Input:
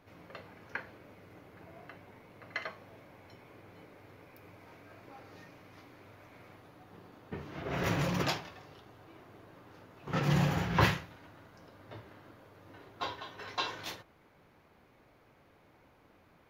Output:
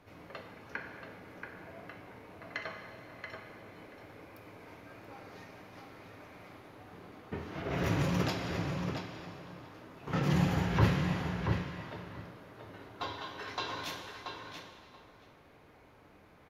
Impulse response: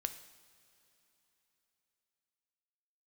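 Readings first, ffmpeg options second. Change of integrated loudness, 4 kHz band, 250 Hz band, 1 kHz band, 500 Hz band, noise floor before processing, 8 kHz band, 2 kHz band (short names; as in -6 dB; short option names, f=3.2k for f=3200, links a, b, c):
-1.5 dB, -1.5 dB, +3.0 dB, -1.0 dB, +1.0 dB, -64 dBFS, -1.5 dB, -1.0 dB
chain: -filter_complex "[1:a]atrim=start_sample=2205,afade=t=out:st=0.44:d=0.01,atrim=end_sample=19845,asetrate=25578,aresample=44100[a];[0:a][a]afir=irnorm=-1:irlink=0,acrossover=split=430[b][c];[c]acompressor=threshold=-37dB:ratio=2.5[d];[b][d]amix=inputs=2:normalize=0,asplit=2[e][f];[f]adelay=681,lowpass=f=4.1k:p=1,volume=-5dB,asplit=2[g][h];[h]adelay=681,lowpass=f=4.1k:p=1,volume=0.16,asplit=2[i][j];[j]adelay=681,lowpass=f=4.1k:p=1,volume=0.16[k];[e][g][i][k]amix=inputs=4:normalize=0"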